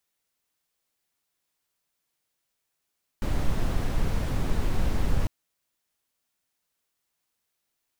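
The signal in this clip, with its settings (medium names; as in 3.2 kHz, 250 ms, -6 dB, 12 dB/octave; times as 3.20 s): noise brown, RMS -23 dBFS 2.05 s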